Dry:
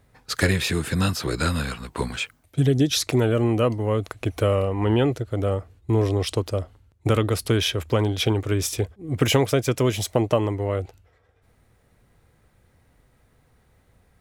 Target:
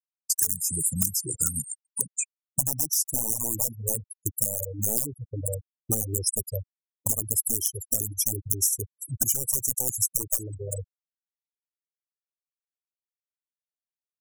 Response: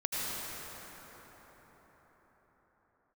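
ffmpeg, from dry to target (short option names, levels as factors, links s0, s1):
-filter_complex "[0:a]aeval=exprs='(mod(4.47*val(0)+1,2)-1)/4.47':c=same,equalizer=f=61:t=o:w=0.54:g=-10,asplit=2[s0][s1];[s1]aecho=0:1:367|734|1101|1468|1835:0.158|0.0872|0.0479|0.0264|0.0145[s2];[s0][s2]amix=inputs=2:normalize=0,aexciter=amount=10:drive=9.1:freq=5800,afftfilt=real='re*gte(hypot(re,im),0.282)':imag='im*gte(hypot(re,im),0.282)':win_size=1024:overlap=0.75,agate=range=0.0224:threshold=0.0398:ratio=3:detection=peak,acompressor=threshold=0.251:ratio=8,lowshelf=f=380:g=4.5,afftfilt=real='re*(1-between(b*sr/1024,330*pow(2900/330,0.5+0.5*sin(2*PI*4.9*pts/sr))/1.41,330*pow(2900/330,0.5+0.5*sin(2*PI*4.9*pts/sr))*1.41))':imag='im*(1-between(b*sr/1024,330*pow(2900/330,0.5+0.5*sin(2*PI*4.9*pts/sr))/1.41,330*pow(2900/330,0.5+0.5*sin(2*PI*4.9*pts/sr))*1.41))':win_size=1024:overlap=0.75,volume=0.376"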